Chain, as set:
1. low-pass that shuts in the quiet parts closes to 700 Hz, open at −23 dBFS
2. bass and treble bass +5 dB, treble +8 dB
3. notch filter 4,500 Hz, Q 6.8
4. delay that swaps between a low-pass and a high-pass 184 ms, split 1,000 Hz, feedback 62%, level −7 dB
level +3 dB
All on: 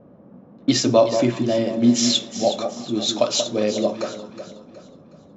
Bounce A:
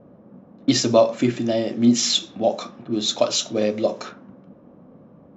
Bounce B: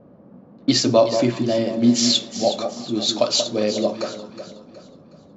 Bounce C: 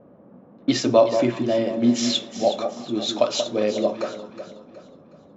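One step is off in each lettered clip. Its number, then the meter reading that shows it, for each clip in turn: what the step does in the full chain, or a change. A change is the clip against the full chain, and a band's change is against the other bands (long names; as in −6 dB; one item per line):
4, echo-to-direct ratio −9.0 dB to none audible
3, 4 kHz band +2.0 dB
2, 125 Hz band −4.0 dB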